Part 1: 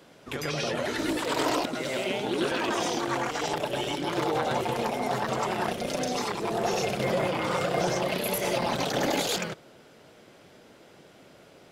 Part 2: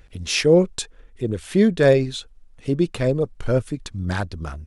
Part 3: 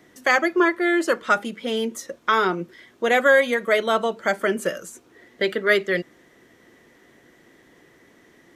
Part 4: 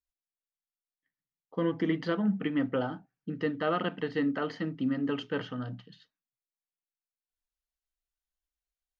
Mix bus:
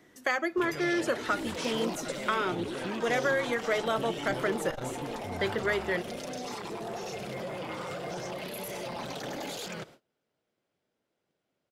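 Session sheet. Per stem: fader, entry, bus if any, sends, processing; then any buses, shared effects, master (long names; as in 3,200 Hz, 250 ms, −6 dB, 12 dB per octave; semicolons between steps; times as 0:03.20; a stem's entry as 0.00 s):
−2.0 dB, 0.30 s, no send, noise gate −47 dBFS, range −27 dB; brickwall limiter −27 dBFS, peak gain reduction 10.5 dB
−14.5 dB, 1.30 s, no send, downward compressor 2.5 to 1, threshold −23 dBFS, peak gain reduction 9 dB
−5.5 dB, 0.00 s, no send, downward compressor, threshold −19 dBFS, peak gain reduction 7.5 dB
−8.0 dB, 0.00 s, no send, output level in coarse steps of 18 dB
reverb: not used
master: saturating transformer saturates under 380 Hz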